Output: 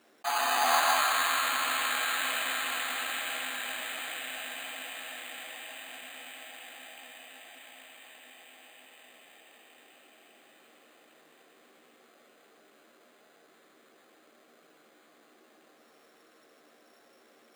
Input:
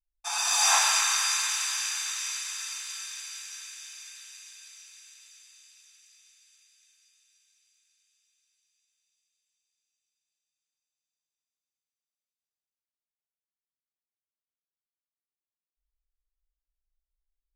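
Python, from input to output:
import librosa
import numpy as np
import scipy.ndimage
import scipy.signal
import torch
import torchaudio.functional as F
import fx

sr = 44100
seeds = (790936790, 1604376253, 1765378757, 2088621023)

p1 = scipy.signal.sosfilt(scipy.signal.butter(2, 1200.0, 'lowpass', fs=sr, output='sos'), x)
p2 = fx.peak_eq(p1, sr, hz=950.0, db=-5.5, octaves=1.3)
p3 = fx.doubler(p2, sr, ms=13.0, db=-5.0)
p4 = p3 + fx.echo_single(p3, sr, ms=159, db=-5.0, dry=0)
p5 = fx.rider(p4, sr, range_db=4, speed_s=2.0)
p6 = fx.notch(p5, sr, hz=920.0, q=5.9)
p7 = np.repeat(p6[::8], 8)[:len(p6)]
p8 = scipy.signal.sosfilt(scipy.signal.butter(4, 260.0, 'highpass', fs=sr, output='sos'), p7)
p9 = fx.env_flatten(p8, sr, amount_pct=50)
y = p9 * librosa.db_to_amplitude(7.0)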